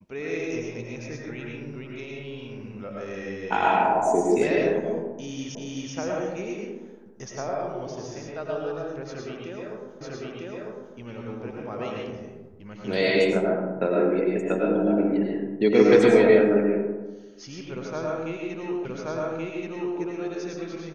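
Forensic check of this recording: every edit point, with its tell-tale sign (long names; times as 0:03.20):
0:05.55: the same again, the last 0.38 s
0:10.01: the same again, the last 0.95 s
0:18.85: the same again, the last 1.13 s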